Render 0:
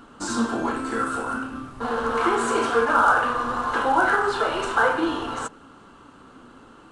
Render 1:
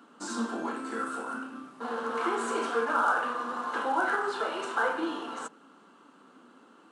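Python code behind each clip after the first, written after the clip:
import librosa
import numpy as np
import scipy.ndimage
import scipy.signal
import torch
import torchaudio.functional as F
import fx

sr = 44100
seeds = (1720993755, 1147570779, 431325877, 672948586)

y = scipy.signal.sosfilt(scipy.signal.butter(6, 180.0, 'highpass', fs=sr, output='sos'), x)
y = F.gain(torch.from_numpy(y), -8.0).numpy()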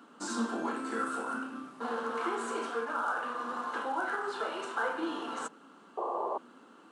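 y = fx.rider(x, sr, range_db=4, speed_s=0.5)
y = fx.spec_paint(y, sr, seeds[0], shape='noise', start_s=5.97, length_s=0.41, low_hz=330.0, high_hz=1200.0, level_db=-30.0)
y = F.gain(torch.from_numpy(y), -3.5).numpy()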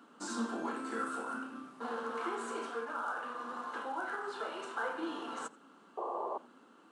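y = fx.rider(x, sr, range_db=10, speed_s=2.0)
y = y + 10.0 ** (-23.0 / 20.0) * np.pad(y, (int(85 * sr / 1000.0), 0))[:len(y)]
y = F.gain(torch.from_numpy(y), -4.5).numpy()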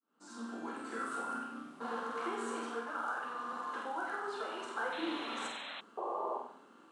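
y = fx.fade_in_head(x, sr, length_s=1.14)
y = fx.room_flutter(y, sr, wall_m=8.1, rt60_s=0.56)
y = fx.spec_paint(y, sr, seeds[1], shape='noise', start_s=4.92, length_s=0.89, low_hz=500.0, high_hz=4200.0, level_db=-44.0)
y = F.gain(torch.from_numpy(y), -1.0).numpy()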